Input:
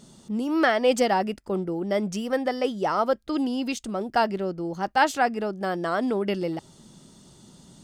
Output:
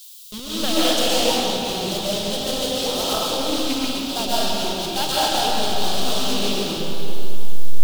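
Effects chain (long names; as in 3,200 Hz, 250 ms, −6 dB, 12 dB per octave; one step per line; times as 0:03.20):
hold until the input has moved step −23.5 dBFS
comb and all-pass reverb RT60 3.3 s, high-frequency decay 0.75×, pre-delay 95 ms, DRR −9 dB
background noise blue −45 dBFS
high shelf with overshoot 2,600 Hz +10 dB, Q 3
highs frequency-modulated by the lows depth 0.18 ms
level −7.5 dB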